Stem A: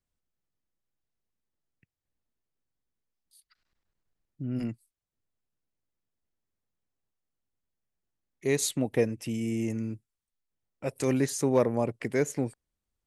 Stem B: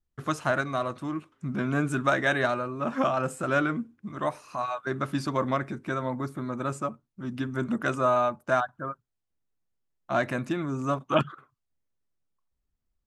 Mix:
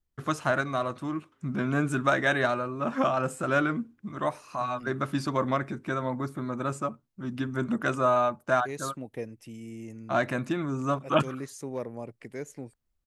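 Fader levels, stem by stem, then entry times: -11.0 dB, 0.0 dB; 0.20 s, 0.00 s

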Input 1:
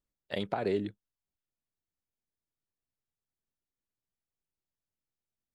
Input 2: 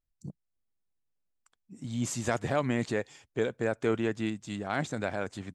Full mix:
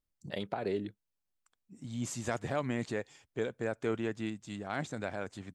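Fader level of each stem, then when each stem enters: -3.5 dB, -5.0 dB; 0.00 s, 0.00 s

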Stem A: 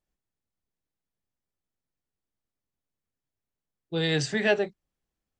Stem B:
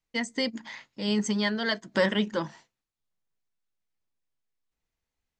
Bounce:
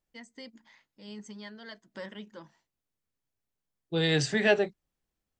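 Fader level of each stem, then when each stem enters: 0.0 dB, -17.5 dB; 0.00 s, 0.00 s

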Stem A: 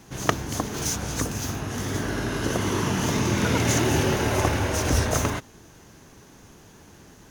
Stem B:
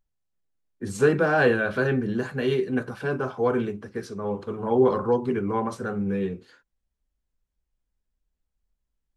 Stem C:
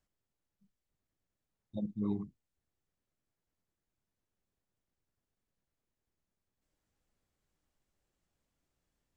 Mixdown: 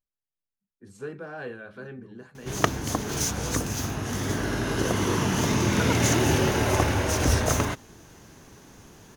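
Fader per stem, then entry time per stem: 0.0 dB, -17.0 dB, -15.0 dB; 2.35 s, 0.00 s, 0.00 s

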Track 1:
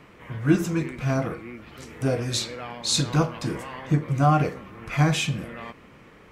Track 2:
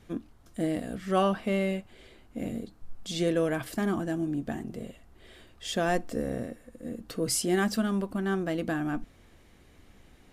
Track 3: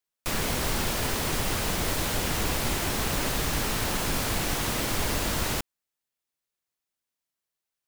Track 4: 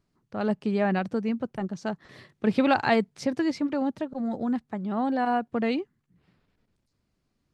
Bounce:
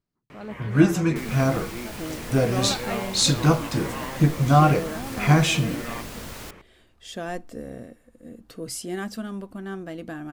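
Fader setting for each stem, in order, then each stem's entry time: +3.0 dB, -5.0 dB, -10.5 dB, -10.5 dB; 0.30 s, 1.40 s, 0.90 s, 0.00 s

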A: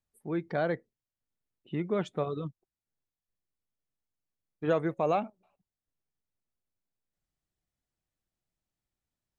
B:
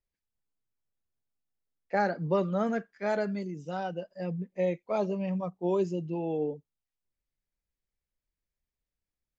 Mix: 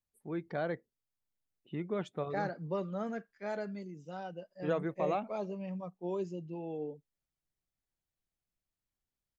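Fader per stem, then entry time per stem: -5.5 dB, -8.5 dB; 0.00 s, 0.40 s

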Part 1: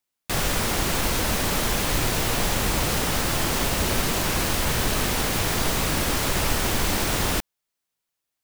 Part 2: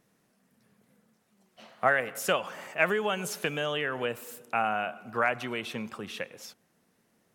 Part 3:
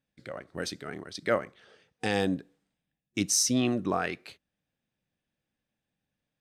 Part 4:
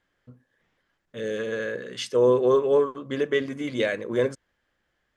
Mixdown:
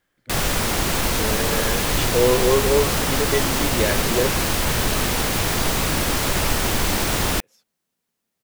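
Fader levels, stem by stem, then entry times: +2.5 dB, -15.0 dB, -14.0 dB, +1.0 dB; 0.00 s, 1.10 s, 0.00 s, 0.00 s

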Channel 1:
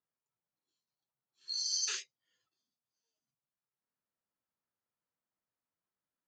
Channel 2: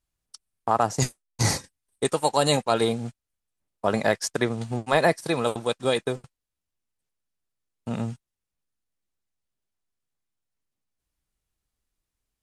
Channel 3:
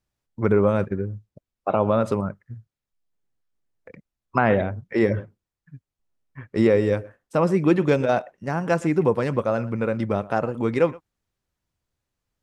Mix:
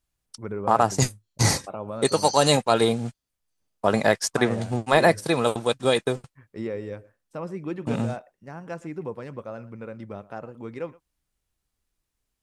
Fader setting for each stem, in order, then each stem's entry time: -1.0 dB, +2.5 dB, -13.5 dB; 0.55 s, 0.00 s, 0.00 s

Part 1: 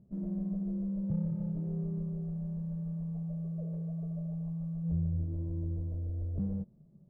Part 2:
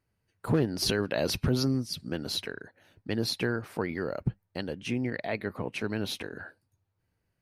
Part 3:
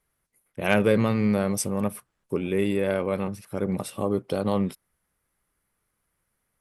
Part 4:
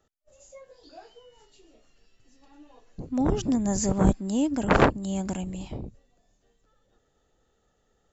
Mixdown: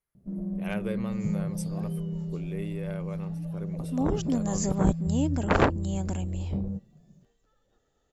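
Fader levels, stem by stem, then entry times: +2.5 dB, mute, -13.5 dB, -3.0 dB; 0.15 s, mute, 0.00 s, 0.80 s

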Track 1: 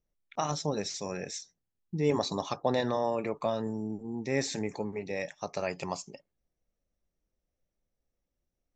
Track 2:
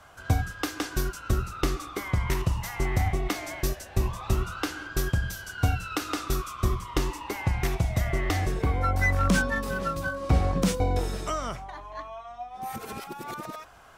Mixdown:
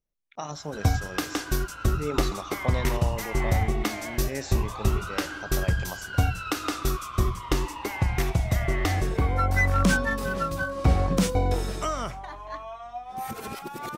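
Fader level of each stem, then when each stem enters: -4.0 dB, +1.5 dB; 0.00 s, 0.55 s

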